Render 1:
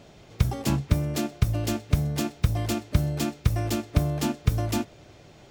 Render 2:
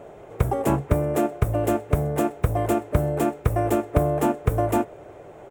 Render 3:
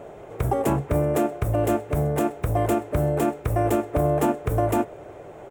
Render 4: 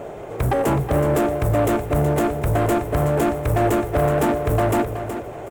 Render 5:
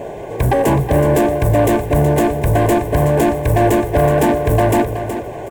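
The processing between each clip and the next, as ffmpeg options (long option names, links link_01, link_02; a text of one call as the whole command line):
ffmpeg -i in.wav -af "firequalizer=gain_entry='entry(230,0);entry(420,13);entry(4600,-17);entry(8000,1)':delay=0.05:min_phase=1" out.wav
ffmpeg -i in.wav -af "alimiter=limit=-14.5dB:level=0:latency=1:release=34,volume=2dB" out.wav
ffmpeg -i in.wav -filter_complex "[0:a]asplit=2[link_01][link_02];[link_02]acrusher=bits=5:mode=log:mix=0:aa=0.000001,volume=-7.5dB[link_03];[link_01][link_03]amix=inputs=2:normalize=0,asoftclip=type=tanh:threshold=-19.5dB,aecho=1:1:372|744|1116:0.335|0.0837|0.0209,volume=4.5dB" out.wav
ffmpeg -i in.wav -af "asuperstop=centerf=1300:order=20:qfactor=4.8,volume=5.5dB" out.wav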